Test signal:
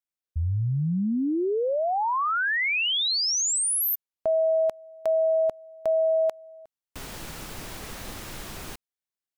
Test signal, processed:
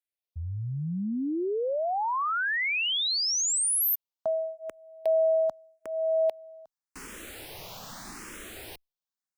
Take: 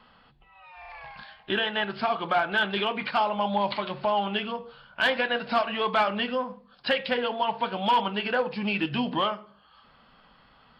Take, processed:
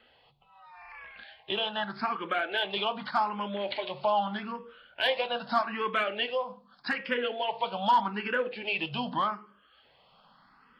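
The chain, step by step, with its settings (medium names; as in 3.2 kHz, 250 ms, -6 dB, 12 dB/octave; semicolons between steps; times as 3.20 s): bass shelf 130 Hz -10 dB; barber-pole phaser +0.82 Hz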